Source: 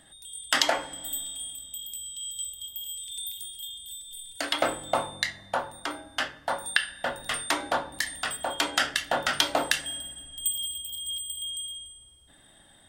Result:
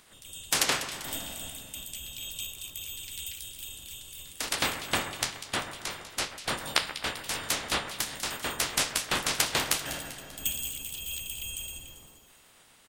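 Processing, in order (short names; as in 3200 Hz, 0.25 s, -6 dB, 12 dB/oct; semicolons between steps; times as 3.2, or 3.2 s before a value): spectral limiter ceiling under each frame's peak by 26 dB; harmoniser -4 st -10 dB, -3 st -6 dB; split-band echo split 2300 Hz, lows 0.131 s, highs 0.196 s, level -12 dB; gain -3.5 dB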